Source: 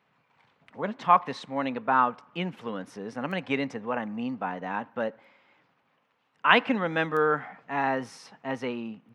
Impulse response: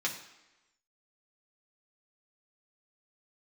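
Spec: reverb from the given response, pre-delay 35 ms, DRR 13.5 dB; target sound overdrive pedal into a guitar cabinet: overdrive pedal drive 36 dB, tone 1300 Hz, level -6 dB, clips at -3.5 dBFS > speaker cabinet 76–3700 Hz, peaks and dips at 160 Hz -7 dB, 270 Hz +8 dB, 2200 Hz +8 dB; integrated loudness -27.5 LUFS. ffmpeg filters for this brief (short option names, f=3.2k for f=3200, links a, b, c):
-filter_complex "[0:a]asplit=2[a][b];[1:a]atrim=start_sample=2205,adelay=35[c];[b][c]afir=irnorm=-1:irlink=0,volume=-19dB[d];[a][d]amix=inputs=2:normalize=0,asplit=2[e][f];[f]highpass=f=720:p=1,volume=36dB,asoftclip=type=tanh:threshold=-3.5dB[g];[e][g]amix=inputs=2:normalize=0,lowpass=f=1.3k:p=1,volume=-6dB,highpass=76,equalizer=f=160:t=q:w=4:g=-7,equalizer=f=270:t=q:w=4:g=8,equalizer=f=2.2k:t=q:w=4:g=8,lowpass=f=3.7k:w=0.5412,lowpass=f=3.7k:w=1.3066,volume=-14dB"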